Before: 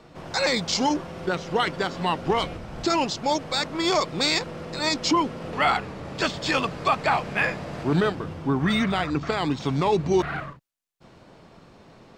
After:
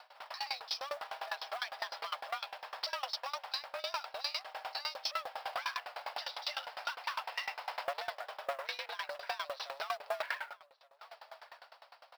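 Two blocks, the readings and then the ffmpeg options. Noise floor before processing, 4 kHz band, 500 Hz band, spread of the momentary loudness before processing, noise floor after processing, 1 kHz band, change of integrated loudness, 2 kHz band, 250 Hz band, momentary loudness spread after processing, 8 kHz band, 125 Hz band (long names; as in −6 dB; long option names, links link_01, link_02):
−52 dBFS, −11.0 dB, −18.0 dB, 7 LU, −64 dBFS, −14.0 dB, −14.5 dB, −12.5 dB, below −40 dB, 12 LU, −18.5 dB, below −40 dB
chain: -filter_complex "[0:a]dynaudnorm=framelen=100:gausssize=13:maxgain=4dB,aresample=11025,asoftclip=type=tanh:threshold=-22.5dB,aresample=44100,highpass=frequency=320:width=0.5412,highpass=frequency=320:width=1.3066,afreqshift=280,aemphasis=mode=production:type=bsi,asplit=2[link_01][link_02];[link_02]adelay=1176,lowpass=frequency=2500:poles=1,volume=-23dB,asplit=2[link_03][link_04];[link_04]adelay=1176,lowpass=frequency=2500:poles=1,volume=0.3[link_05];[link_01][link_03][link_05]amix=inputs=3:normalize=0,alimiter=limit=-22.5dB:level=0:latency=1:release=251,acrusher=bits=5:mode=log:mix=0:aa=0.000001,aeval=exprs='val(0)*pow(10,-23*if(lt(mod(9.9*n/s,1),2*abs(9.9)/1000),1-mod(9.9*n/s,1)/(2*abs(9.9)/1000),(mod(9.9*n/s,1)-2*abs(9.9)/1000)/(1-2*abs(9.9)/1000))/20)':channel_layout=same"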